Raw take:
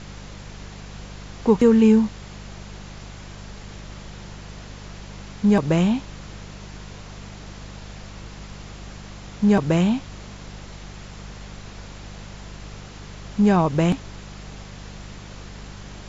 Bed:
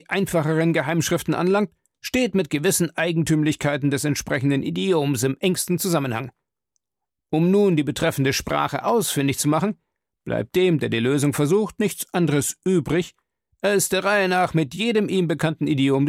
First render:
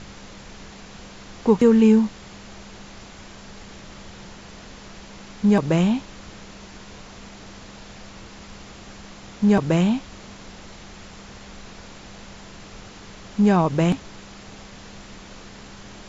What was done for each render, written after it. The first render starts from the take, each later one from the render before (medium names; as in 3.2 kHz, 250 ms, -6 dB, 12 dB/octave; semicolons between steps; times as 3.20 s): de-hum 50 Hz, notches 3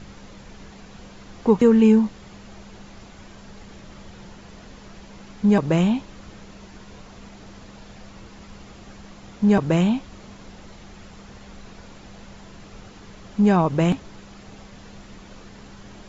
noise reduction 6 dB, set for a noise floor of -43 dBFS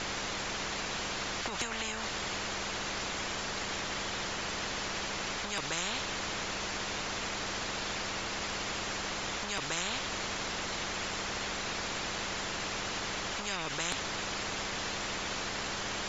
peak limiter -15 dBFS, peak gain reduction 10.5 dB; spectrum-flattening compressor 10:1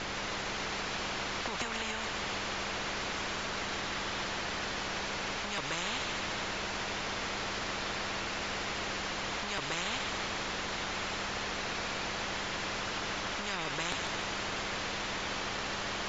distance through air 81 m; thinning echo 145 ms, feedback 64%, high-pass 420 Hz, level -5.5 dB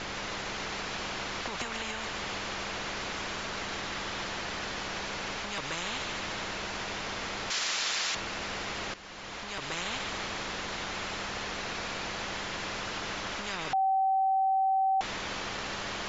7.50–8.15 s: tilt EQ +4.5 dB/octave; 8.94–9.79 s: fade in, from -14 dB; 13.73–15.01 s: bleep 769 Hz -23 dBFS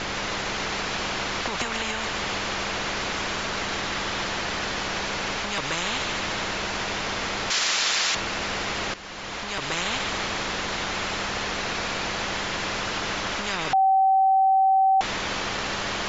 trim +7.5 dB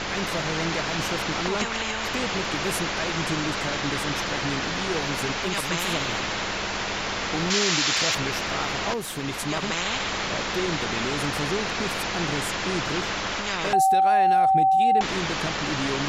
add bed -10.5 dB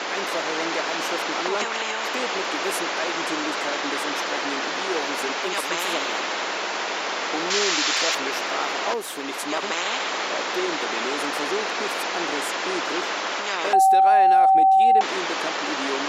high-pass 280 Hz 24 dB/octave; peaking EQ 810 Hz +3.5 dB 2.1 oct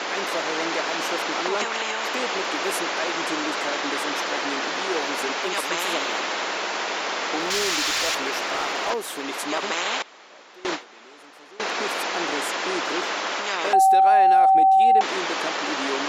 7.40–8.90 s: hard clipper -19.5 dBFS; 10.02–11.60 s: gate with hold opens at -13 dBFS, closes at -19 dBFS